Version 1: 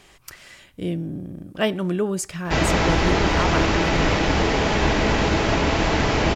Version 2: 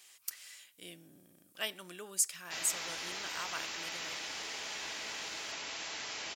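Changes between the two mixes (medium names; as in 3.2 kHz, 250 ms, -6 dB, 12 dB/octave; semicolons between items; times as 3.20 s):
background -6.5 dB; master: add differentiator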